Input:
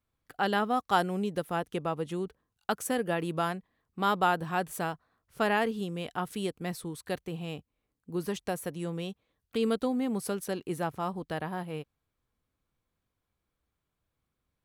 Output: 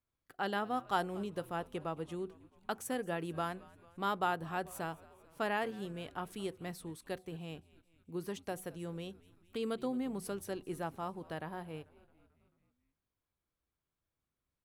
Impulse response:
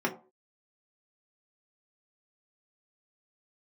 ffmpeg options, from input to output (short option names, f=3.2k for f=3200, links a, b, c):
-filter_complex "[0:a]asplit=6[a][b][c][d][e][f];[b]adelay=220,afreqshift=-84,volume=-21.5dB[g];[c]adelay=440,afreqshift=-168,volume=-25.5dB[h];[d]adelay=660,afreqshift=-252,volume=-29.5dB[i];[e]adelay=880,afreqshift=-336,volume=-33.5dB[j];[f]adelay=1100,afreqshift=-420,volume=-37.6dB[k];[a][g][h][i][j][k]amix=inputs=6:normalize=0,asplit=2[l][m];[1:a]atrim=start_sample=2205[n];[m][n]afir=irnorm=-1:irlink=0,volume=-25.5dB[o];[l][o]amix=inputs=2:normalize=0,volume=-8dB"